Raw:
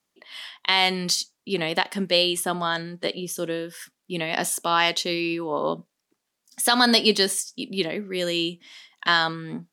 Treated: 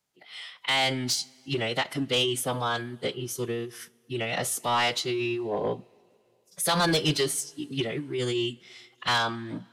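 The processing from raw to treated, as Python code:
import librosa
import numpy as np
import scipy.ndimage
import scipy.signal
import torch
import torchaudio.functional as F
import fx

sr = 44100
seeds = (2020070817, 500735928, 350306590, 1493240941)

y = fx.pitch_keep_formants(x, sr, semitones=-6.0)
y = 10.0 ** (-16.5 / 20.0) * np.tanh(y / 10.0 ** (-16.5 / 20.0))
y = fx.rev_double_slope(y, sr, seeds[0], early_s=0.25, late_s=2.6, knee_db=-18, drr_db=18.0)
y = y * librosa.db_to_amplitude(-1.5)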